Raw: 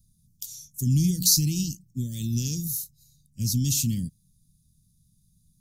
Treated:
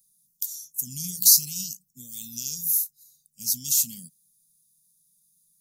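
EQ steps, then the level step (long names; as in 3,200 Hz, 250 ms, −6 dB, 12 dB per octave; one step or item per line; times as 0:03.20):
RIAA equalisation recording
phaser with its sweep stopped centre 330 Hz, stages 6
−7.0 dB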